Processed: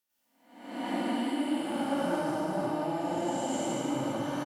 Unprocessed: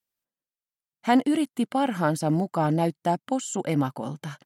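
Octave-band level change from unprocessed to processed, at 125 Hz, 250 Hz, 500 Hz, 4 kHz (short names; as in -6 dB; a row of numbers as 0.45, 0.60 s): -12.5, -5.5, -4.0, -1.5 dB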